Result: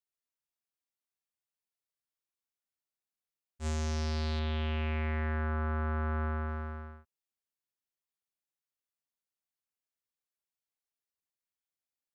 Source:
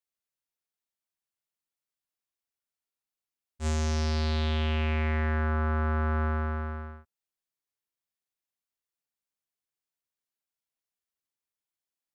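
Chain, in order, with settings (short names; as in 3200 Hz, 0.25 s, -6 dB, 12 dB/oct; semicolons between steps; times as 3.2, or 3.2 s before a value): 4.39–6.49 LPF 4000 Hz 12 dB/oct; gain -5 dB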